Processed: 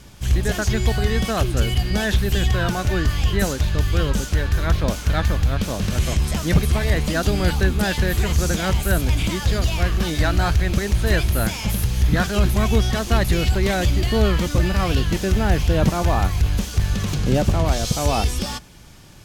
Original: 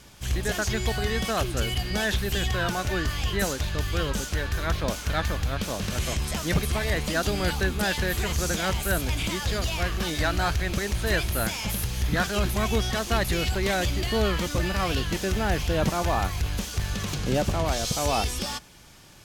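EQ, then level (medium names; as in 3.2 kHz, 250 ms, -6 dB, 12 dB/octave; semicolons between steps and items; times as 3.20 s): bass shelf 310 Hz +7.5 dB; +2.0 dB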